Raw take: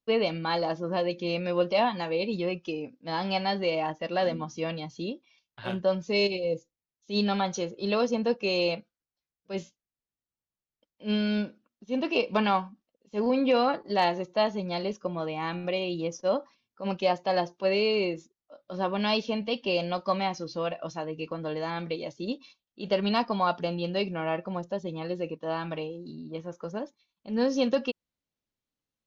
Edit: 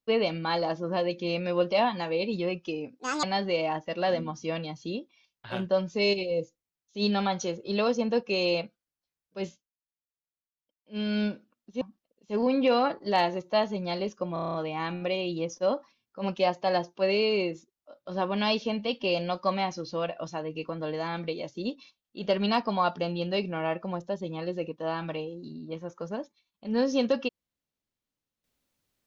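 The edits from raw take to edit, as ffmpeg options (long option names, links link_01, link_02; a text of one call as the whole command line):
ffmpeg -i in.wav -filter_complex "[0:a]asplit=13[link_01][link_02][link_03][link_04][link_05][link_06][link_07][link_08][link_09][link_10][link_11][link_12][link_13];[link_01]atrim=end=2.994[link_14];[link_02]atrim=start=2.99:end=3.37,asetpts=PTS-STARTPTS,asetrate=68796,aresample=44100,atrim=end_sample=10742,asetpts=PTS-STARTPTS[link_15];[link_03]atrim=start=3.366:end=9.85,asetpts=PTS-STARTPTS,afade=type=out:start_time=6.184:duration=0.3:silence=0.251189[link_16];[link_04]atrim=start=9.85:end=11.01,asetpts=PTS-STARTPTS,volume=-12dB[link_17];[link_05]atrim=start=11.01:end=11.952,asetpts=PTS-STARTPTS,afade=type=in:duration=0.3:silence=0.251189[link_18];[link_06]atrim=start=12.648:end=15.202[link_19];[link_07]atrim=start=15.168:end=15.202[link_20];[link_08]atrim=start=15.168:end=15.202[link_21];[link_09]atrim=start=15.168:end=15.202[link_22];[link_10]atrim=start=15.168:end=15.202[link_23];[link_11]atrim=start=15.168:end=15.202[link_24];[link_12]atrim=start=15.168:end=15.202[link_25];[link_13]atrim=start=15.168[link_26];[link_14][link_15]acrossfade=duration=0.004:curve1=hsin:curve2=hsin[link_27];[link_16][link_17][link_18]concat=n=3:v=0:a=1[link_28];[link_27][link_28]acrossfade=duration=0.004:curve1=hsin:curve2=hsin[link_29];[link_29][link_19]acrossfade=duration=0.004:curve1=hsin:curve2=hsin[link_30];[link_30][link_20]acrossfade=duration=0.004:curve1=hsin:curve2=hsin[link_31];[link_31][link_21]acrossfade=duration=0.004:curve1=hsin:curve2=hsin[link_32];[link_32][link_22]acrossfade=duration=0.004:curve1=hsin:curve2=hsin[link_33];[link_33][link_23]acrossfade=duration=0.004:curve1=hsin:curve2=hsin[link_34];[link_34][link_24]acrossfade=duration=0.004:curve1=hsin:curve2=hsin[link_35];[link_35][link_25]acrossfade=duration=0.004:curve1=hsin:curve2=hsin[link_36];[link_36][link_26]acrossfade=duration=0.004:curve1=hsin:curve2=hsin" out.wav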